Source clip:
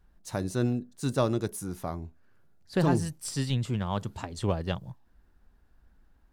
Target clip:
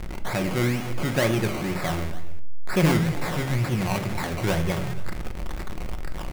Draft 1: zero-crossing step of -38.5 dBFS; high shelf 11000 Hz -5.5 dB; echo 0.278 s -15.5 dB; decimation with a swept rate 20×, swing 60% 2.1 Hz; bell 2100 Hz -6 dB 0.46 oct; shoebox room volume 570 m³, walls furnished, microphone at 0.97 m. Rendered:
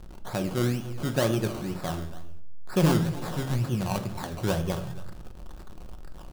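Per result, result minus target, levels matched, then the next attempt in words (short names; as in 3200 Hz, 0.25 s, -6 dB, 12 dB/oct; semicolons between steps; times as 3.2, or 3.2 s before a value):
zero-crossing step: distortion -10 dB; 2000 Hz band -6.0 dB
zero-crossing step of -26.5 dBFS; high shelf 11000 Hz -5.5 dB; echo 0.278 s -15.5 dB; decimation with a swept rate 20×, swing 60% 2.1 Hz; bell 2100 Hz -6 dB 0.46 oct; shoebox room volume 570 m³, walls furnished, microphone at 0.97 m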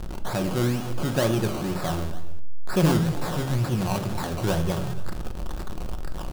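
2000 Hz band -5.0 dB
zero-crossing step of -26.5 dBFS; high shelf 11000 Hz -5.5 dB; echo 0.278 s -15.5 dB; decimation with a swept rate 20×, swing 60% 2.1 Hz; bell 2100 Hz +5.5 dB 0.46 oct; shoebox room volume 570 m³, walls furnished, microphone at 0.97 m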